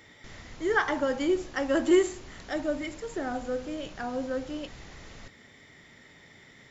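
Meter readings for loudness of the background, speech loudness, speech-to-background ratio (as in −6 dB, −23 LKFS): −49.0 LKFS, −29.5 LKFS, 19.5 dB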